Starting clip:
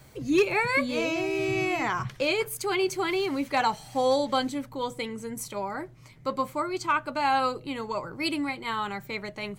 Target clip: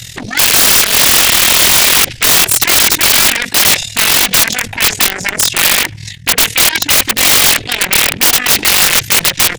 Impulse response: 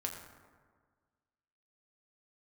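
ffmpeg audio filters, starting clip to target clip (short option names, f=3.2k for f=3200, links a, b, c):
-filter_complex "[0:a]lowpass=12k,afwtdn=0.0141,highshelf=f=7.5k:g=-4.5,areverse,acompressor=threshold=-34dB:ratio=5,areverse,aeval=exprs='0.0562*sin(PI/2*7.94*val(0)/0.0562)':c=same,asplit=2[a][b];[b]adelay=89,lowpass=f=1.9k:p=1,volume=-23dB,asplit=2[c][d];[d]adelay=89,lowpass=f=1.9k:p=1,volume=0.39,asplit=2[e][f];[f]adelay=89,lowpass=f=1.9k:p=1,volume=0.39[g];[a][c][e][g]amix=inputs=4:normalize=0,tremolo=f=47:d=0.788,aexciter=amount=15.9:drive=3.8:freq=2.1k,asetrate=38170,aresample=44100,atempo=1.15535,aeval=exprs='(mod(2.66*val(0)+1,2)-1)/2.66':c=same,volume=6.5dB"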